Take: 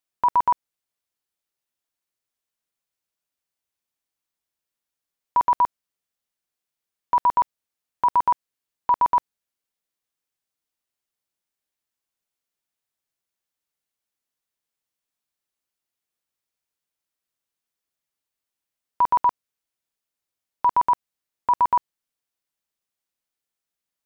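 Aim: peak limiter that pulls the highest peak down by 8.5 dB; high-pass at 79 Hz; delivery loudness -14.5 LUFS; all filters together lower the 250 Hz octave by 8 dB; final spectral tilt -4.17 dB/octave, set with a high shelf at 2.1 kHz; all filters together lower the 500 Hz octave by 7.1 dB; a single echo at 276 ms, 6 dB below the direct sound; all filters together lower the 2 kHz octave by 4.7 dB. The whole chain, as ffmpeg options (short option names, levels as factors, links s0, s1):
-af "highpass=79,equalizer=f=250:t=o:g=-8.5,equalizer=f=500:t=o:g=-7.5,equalizer=f=2000:t=o:g=-8,highshelf=f=2100:g=4,alimiter=limit=0.0631:level=0:latency=1,aecho=1:1:276:0.501,volume=9.44"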